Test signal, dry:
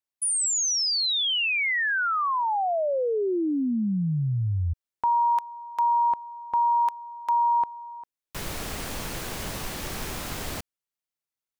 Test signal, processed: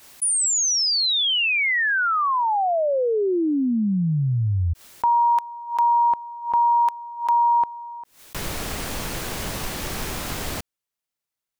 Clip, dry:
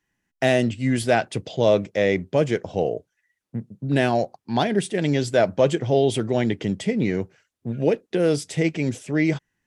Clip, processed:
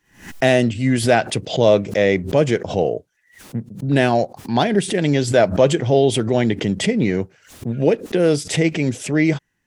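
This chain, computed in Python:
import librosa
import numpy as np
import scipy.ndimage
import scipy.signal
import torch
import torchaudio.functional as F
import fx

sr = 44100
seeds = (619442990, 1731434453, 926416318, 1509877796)

y = fx.pre_swell(x, sr, db_per_s=130.0)
y = F.gain(torch.from_numpy(y), 4.0).numpy()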